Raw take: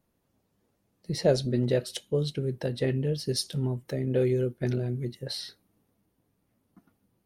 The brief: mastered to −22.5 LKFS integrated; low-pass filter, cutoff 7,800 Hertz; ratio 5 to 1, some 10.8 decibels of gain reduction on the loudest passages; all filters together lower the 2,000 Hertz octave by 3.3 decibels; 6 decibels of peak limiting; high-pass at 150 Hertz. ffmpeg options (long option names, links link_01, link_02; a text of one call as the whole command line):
ffmpeg -i in.wav -af "highpass=150,lowpass=7800,equalizer=frequency=2000:width_type=o:gain=-4,acompressor=threshold=-29dB:ratio=5,volume=14dB,alimiter=limit=-12dB:level=0:latency=1" out.wav